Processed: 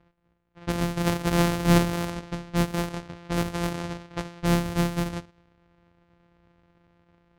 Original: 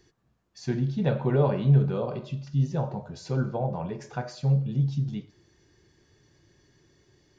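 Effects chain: sorted samples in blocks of 256 samples; level-controlled noise filter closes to 2.6 kHz, open at -23 dBFS

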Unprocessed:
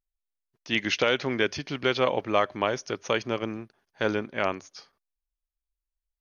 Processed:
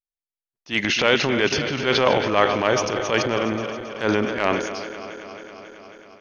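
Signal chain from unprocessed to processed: backward echo that repeats 136 ms, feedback 85%, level -14 dB; gate with hold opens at -39 dBFS; transient shaper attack -9 dB, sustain +6 dB; trim +7 dB

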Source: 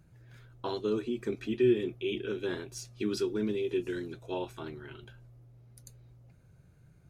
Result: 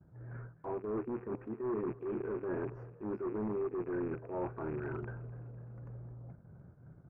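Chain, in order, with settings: rattle on loud lows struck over -47 dBFS, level -31 dBFS; reverse; compression 12:1, threshold -42 dBFS, peak gain reduction 21.5 dB; reverse; high-pass 94 Hz 6 dB/octave; expander -56 dBFS; in parallel at -6 dB: integer overflow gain 40 dB; on the sum: inverse Chebyshev low-pass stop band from 3.5 kHz, stop band 50 dB; frequency-shifting echo 251 ms, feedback 53%, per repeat +40 Hz, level -19.5 dB; transient shaper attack -8 dB, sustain -3 dB; trim +9 dB

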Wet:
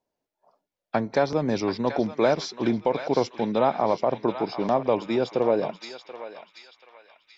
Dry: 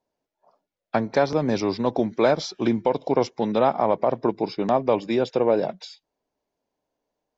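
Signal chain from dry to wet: band-passed feedback delay 733 ms, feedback 53%, band-pass 2.6 kHz, level -6 dB; trim -2 dB

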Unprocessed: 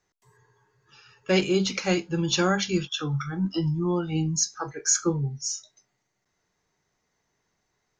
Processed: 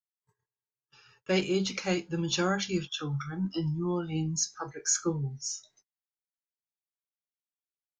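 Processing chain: gate -57 dBFS, range -35 dB; trim -5 dB

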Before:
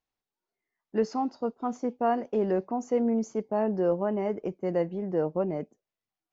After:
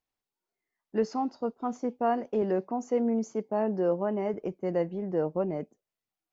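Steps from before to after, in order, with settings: 2.42–4.34 s: high-pass 120 Hz; trim -1 dB

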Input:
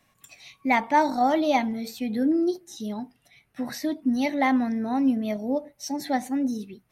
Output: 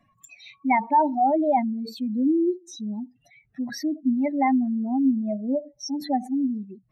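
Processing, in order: spectral contrast enhancement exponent 2.4; trim +1.5 dB

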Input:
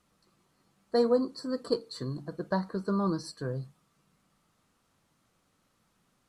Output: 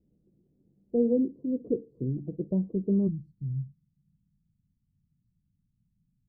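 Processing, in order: inverse Chebyshev low-pass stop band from 1.4 kHz, stop band 60 dB, from 3.07 s stop band from 590 Hz; trim +5 dB

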